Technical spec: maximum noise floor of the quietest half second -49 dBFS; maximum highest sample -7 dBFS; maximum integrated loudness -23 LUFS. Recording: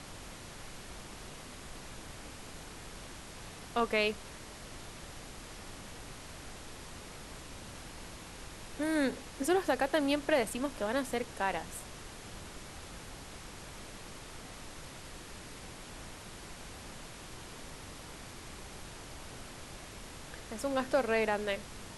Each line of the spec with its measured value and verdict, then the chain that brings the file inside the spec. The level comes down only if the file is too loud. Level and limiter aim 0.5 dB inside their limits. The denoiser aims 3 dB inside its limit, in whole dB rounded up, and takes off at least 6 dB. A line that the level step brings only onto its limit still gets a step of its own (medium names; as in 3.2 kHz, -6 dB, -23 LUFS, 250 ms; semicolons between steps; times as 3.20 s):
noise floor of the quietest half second -47 dBFS: fail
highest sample -16.5 dBFS: pass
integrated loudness -38.0 LUFS: pass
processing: noise reduction 6 dB, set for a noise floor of -47 dBFS